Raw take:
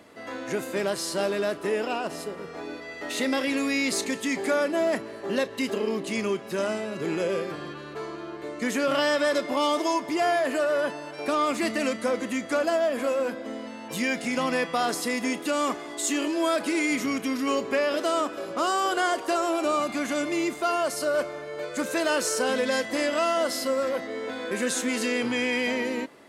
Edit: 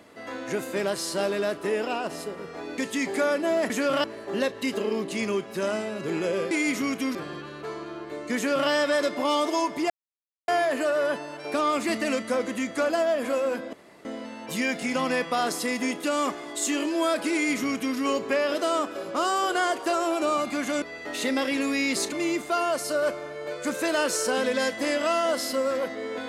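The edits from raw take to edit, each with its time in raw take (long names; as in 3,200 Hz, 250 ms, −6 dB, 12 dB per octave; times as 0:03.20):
0:02.78–0:04.08: move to 0:20.24
0:08.68–0:09.02: duplicate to 0:05.00
0:10.22: splice in silence 0.58 s
0:13.47: splice in room tone 0.32 s
0:16.75–0:17.39: duplicate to 0:07.47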